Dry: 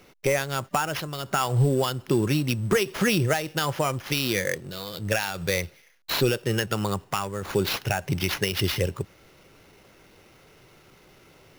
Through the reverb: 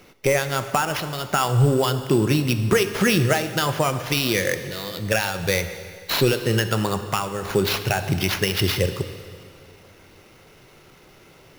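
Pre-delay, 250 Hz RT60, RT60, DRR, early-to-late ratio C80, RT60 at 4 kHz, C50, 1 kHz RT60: 7 ms, 2.2 s, 2.2 s, 9.0 dB, 11.0 dB, 2.0 s, 10.0 dB, 2.2 s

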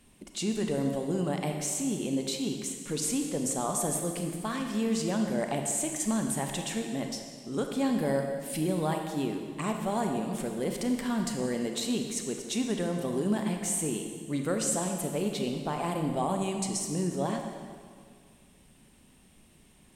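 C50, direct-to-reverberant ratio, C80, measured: 4.5 dB, 3.5 dB, 5.5 dB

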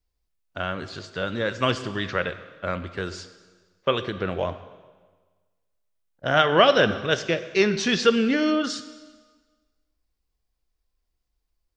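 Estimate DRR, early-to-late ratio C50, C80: 11.0 dB, 12.5 dB, 14.0 dB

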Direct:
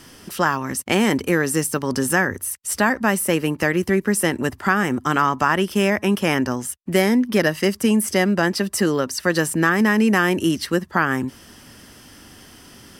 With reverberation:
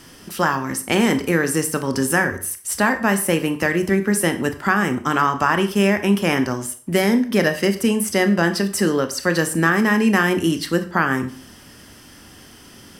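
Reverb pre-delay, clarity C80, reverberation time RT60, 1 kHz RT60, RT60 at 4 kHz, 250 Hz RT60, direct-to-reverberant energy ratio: 23 ms, 17.0 dB, 0.45 s, 0.45 s, 0.40 s, 0.45 s, 8.5 dB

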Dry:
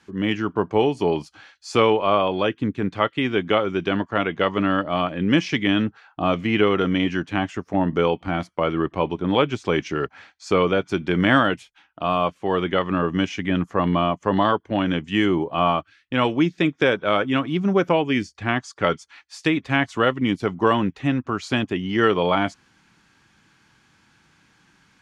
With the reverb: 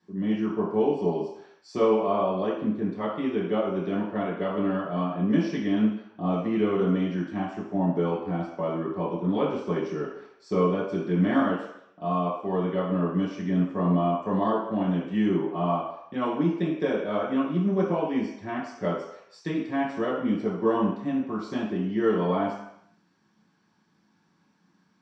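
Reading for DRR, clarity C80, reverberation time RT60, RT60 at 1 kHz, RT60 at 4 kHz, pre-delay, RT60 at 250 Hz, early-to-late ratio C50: -6.5 dB, 6.0 dB, 0.75 s, 0.80 s, 0.70 s, 3 ms, 0.55 s, 2.5 dB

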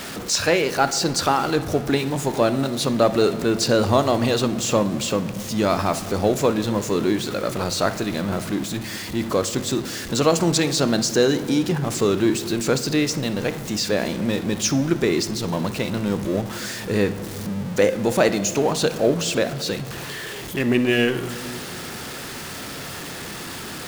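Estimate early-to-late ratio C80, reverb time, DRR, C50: 15.5 dB, 2.3 s, 11.0 dB, 12.5 dB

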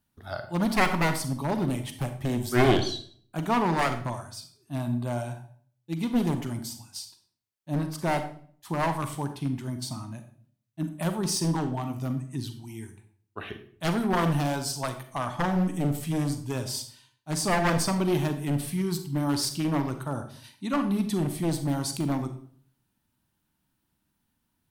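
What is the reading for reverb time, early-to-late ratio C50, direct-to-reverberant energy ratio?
0.50 s, 10.0 dB, 8.0 dB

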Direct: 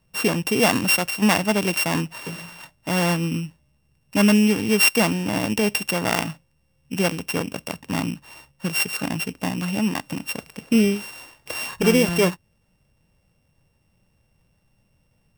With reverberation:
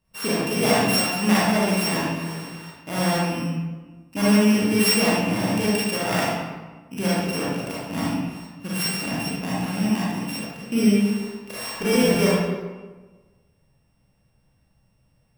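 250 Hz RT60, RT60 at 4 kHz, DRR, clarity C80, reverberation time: 1.4 s, 0.85 s, -8.0 dB, 0.5 dB, 1.3 s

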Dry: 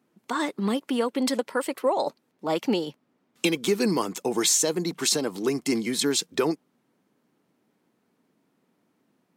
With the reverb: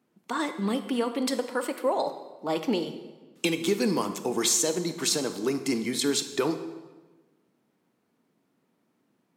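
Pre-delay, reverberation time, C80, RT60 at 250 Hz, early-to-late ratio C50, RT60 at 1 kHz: 21 ms, 1.3 s, 12.0 dB, 1.4 s, 10.5 dB, 1.2 s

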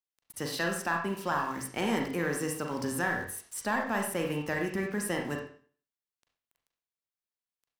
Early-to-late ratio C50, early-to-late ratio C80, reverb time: 5.5 dB, 9.0 dB, 0.45 s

